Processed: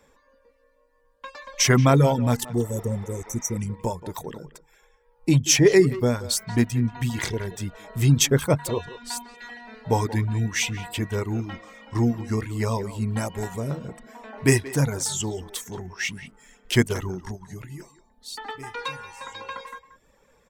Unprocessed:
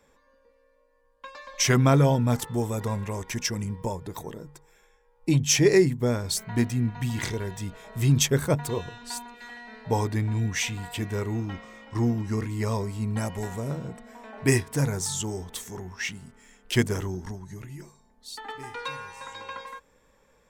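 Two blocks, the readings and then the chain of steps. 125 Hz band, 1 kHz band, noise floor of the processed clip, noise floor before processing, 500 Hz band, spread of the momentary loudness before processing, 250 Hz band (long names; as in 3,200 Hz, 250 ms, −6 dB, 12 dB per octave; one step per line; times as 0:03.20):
+2.0 dB, +2.5 dB, −62 dBFS, −64 dBFS, +3.0 dB, 20 LU, +2.5 dB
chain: healed spectral selection 0:02.58–0:03.54, 580–5,600 Hz both
reverb reduction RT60 0.63 s
far-end echo of a speakerphone 180 ms, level −14 dB
level +3.5 dB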